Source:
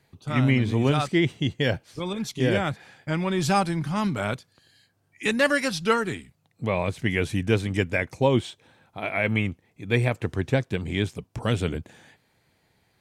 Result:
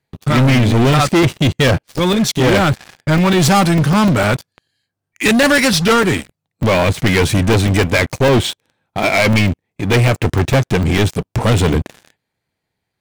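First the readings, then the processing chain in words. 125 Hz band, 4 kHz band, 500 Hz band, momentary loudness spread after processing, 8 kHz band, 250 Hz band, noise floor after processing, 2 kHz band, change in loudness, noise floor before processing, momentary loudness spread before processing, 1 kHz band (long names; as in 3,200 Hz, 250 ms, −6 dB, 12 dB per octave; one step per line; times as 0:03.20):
+12.0 dB, +13.5 dB, +10.5 dB, 7 LU, +16.0 dB, +11.5 dB, −78 dBFS, +10.5 dB, +11.0 dB, −68 dBFS, 10 LU, +11.5 dB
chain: leveller curve on the samples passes 5
regular buffer underruns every 0.15 s, samples 128, zero, from 0:00.93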